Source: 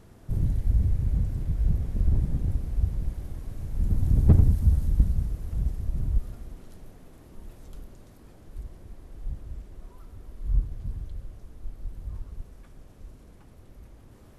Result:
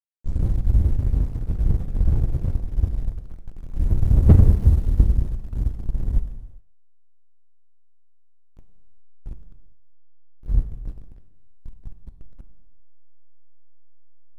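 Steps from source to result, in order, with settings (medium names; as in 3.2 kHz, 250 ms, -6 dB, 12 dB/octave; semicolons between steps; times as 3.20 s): tape start-up on the opening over 0.46 s; hysteresis with a dead band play -22.5 dBFS; gated-style reverb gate 430 ms falling, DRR 8.5 dB; trim +5.5 dB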